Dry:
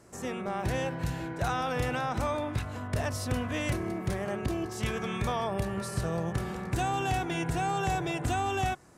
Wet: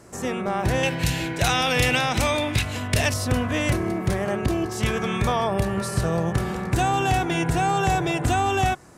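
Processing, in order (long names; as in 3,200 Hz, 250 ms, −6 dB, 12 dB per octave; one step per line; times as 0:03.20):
0:00.83–0:03.14: high shelf with overshoot 1,800 Hz +8.5 dB, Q 1.5
level +8 dB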